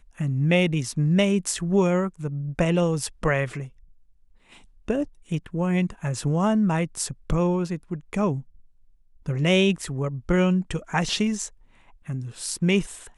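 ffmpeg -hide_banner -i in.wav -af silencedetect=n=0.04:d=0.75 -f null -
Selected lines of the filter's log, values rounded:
silence_start: 3.63
silence_end: 4.88 | silence_duration: 1.26
silence_start: 8.39
silence_end: 9.28 | silence_duration: 0.89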